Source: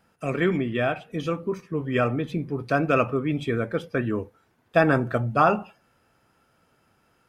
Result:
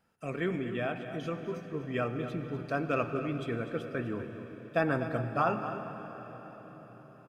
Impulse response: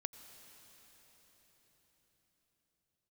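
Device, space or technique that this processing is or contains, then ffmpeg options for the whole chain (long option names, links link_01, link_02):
cave: -filter_complex "[0:a]aecho=1:1:248:0.251[link_01];[1:a]atrim=start_sample=2205[link_02];[link_01][link_02]afir=irnorm=-1:irlink=0,volume=-6.5dB"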